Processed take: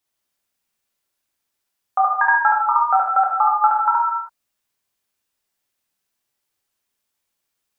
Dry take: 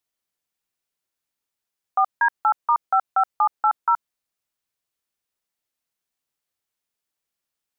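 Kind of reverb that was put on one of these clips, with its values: gated-style reverb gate 350 ms falling, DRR -2.5 dB; trim +2.5 dB

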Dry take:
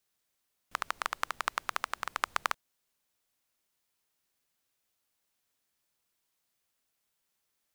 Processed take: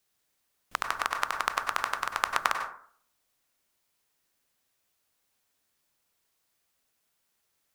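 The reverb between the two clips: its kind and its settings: plate-style reverb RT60 0.54 s, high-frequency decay 0.4×, pre-delay 85 ms, DRR 4.5 dB; trim +3.5 dB

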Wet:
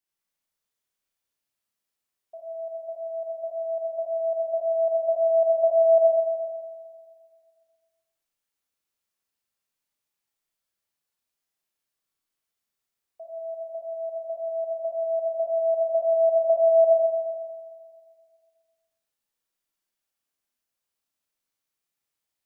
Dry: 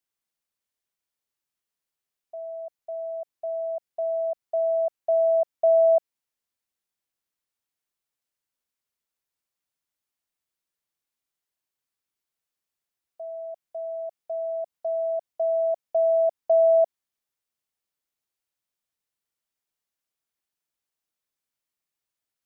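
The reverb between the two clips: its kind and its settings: Schroeder reverb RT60 1.9 s, combs from 28 ms, DRR -4.5 dB; trim -3.5 dB

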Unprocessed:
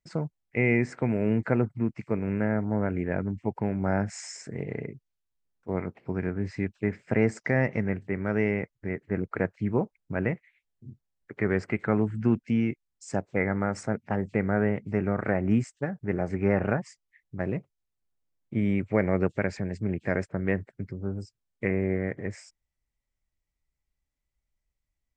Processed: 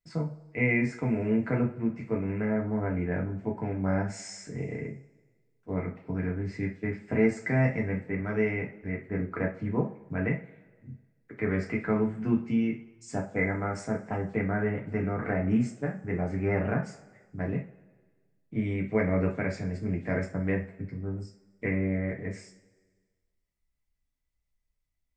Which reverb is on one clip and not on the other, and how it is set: two-slope reverb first 0.3 s, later 1.5 s, from -21 dB, DRR -2 dB; trim -6 dB

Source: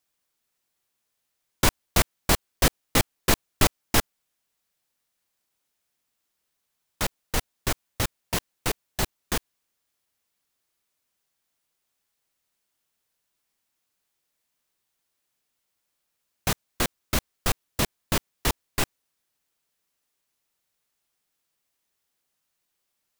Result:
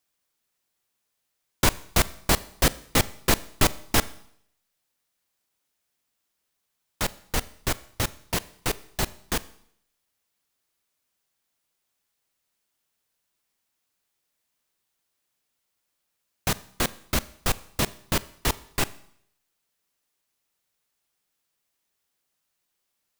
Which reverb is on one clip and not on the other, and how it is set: Schroeder reverb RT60 0.67 s, combs from 28 ms, DRR 18 dB

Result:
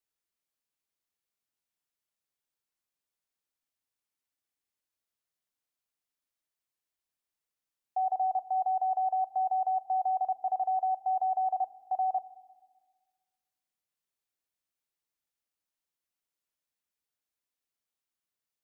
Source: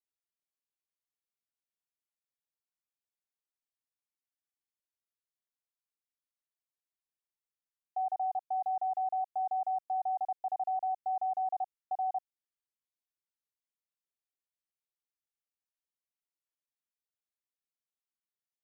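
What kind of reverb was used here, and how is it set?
FDN reverb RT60 1.5 s, low-frequency decay 1.4×, high-frequency decay 0.95×, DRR 15.5 dB; trim +4 dB

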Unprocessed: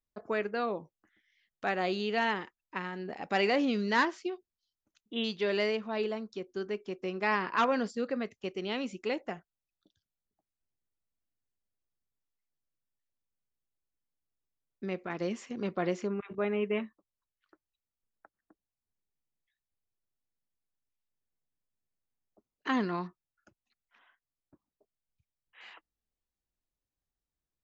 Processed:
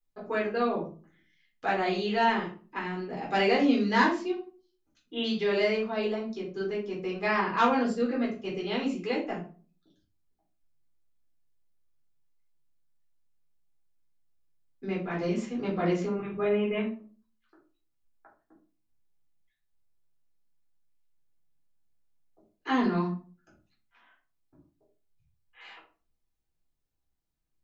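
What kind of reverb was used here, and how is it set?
simulated room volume 240 m³, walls furnished, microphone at 3.9 m; trim -4.5 dB

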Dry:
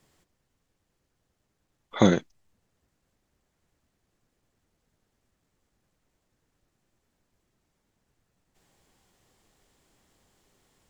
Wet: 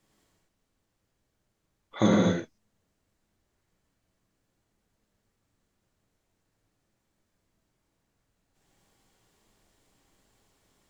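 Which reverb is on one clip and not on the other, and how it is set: gated-style reverb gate 280 ms flat, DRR -4 dB; trim -6.5 dB

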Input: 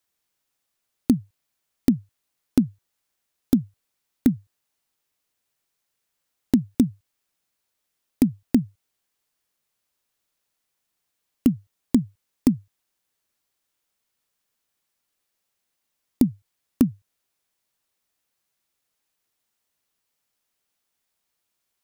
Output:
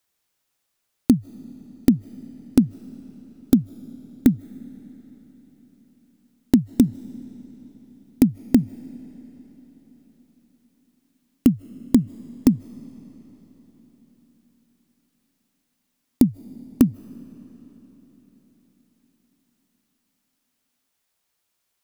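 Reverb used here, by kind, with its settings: algorithmic reverb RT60 4.7 s, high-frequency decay 0.85×, pre-delay 115 ms, DRR 19 dB; trim +3 dB

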